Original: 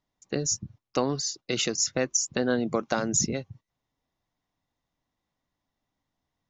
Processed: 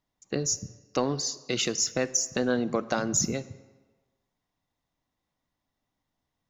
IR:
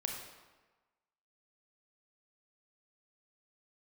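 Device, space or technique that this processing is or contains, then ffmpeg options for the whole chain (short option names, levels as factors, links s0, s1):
saturated reverb return: -filter_complex "[0:a]asplit=2[s0][s1];[1:a]atrim=start_sample=2205[s2];[s1][s2]afir=irnorm=-1:irlink=0,asoftclip=type=tanh:threshold=0.0794,volume=0.282[s3];[s0][s3]amix=inputs=2:normalize=0,volume=0.794"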